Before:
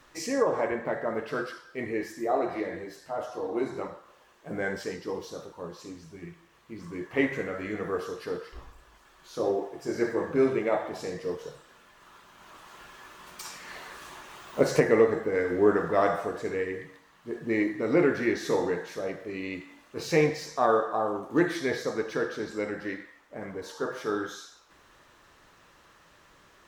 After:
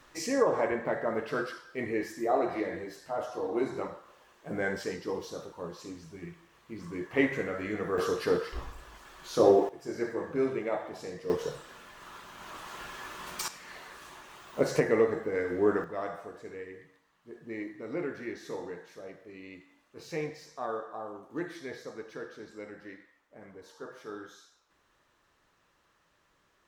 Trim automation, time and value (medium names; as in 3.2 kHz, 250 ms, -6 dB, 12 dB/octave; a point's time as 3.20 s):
-0.5 dB
from 7.98 s +6.5 dB
from 9.69 s -5.5 dB
from 11.30 s +6 dB
from 13.48 s -4 dB
from 15.84 s -12 dB